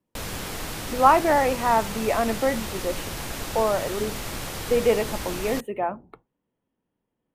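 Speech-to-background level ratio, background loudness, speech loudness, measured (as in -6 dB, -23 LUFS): 8.5 dB, -32.5 LUFS, -24.0 LUFS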